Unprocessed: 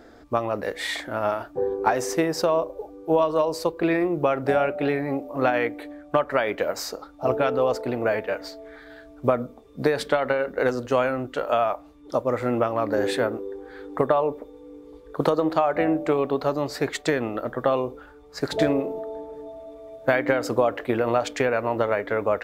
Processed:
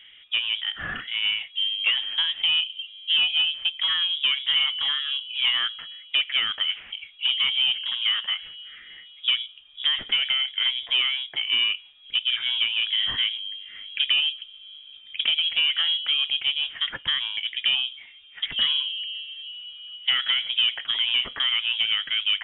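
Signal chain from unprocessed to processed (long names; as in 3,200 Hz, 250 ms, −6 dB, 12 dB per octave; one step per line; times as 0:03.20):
mid-hump overdrive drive 16 dB, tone 1,300 Hz, clips at −4.5 dBFS
voice inversion scrambler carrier 3,600 Hz
level −5.5 dB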